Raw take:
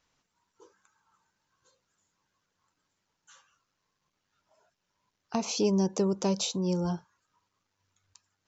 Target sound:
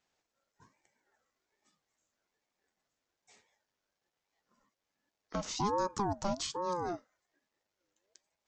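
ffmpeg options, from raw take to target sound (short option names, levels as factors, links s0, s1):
-af "aeval=exprs='val(0)*sin(2*PI*570*n/s+570*0.3/1.2*sin(2*PI*1.2*n/s))':c=same,volume=0.668"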